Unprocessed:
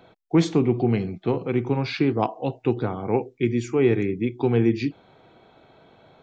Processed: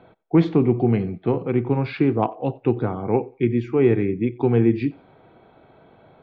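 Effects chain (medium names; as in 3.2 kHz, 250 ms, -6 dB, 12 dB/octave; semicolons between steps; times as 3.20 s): distance through air 390 m; thinning echo 91 ms, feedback 30%, high-pass 350 Hz, level -23.5 dB; trim +3 dB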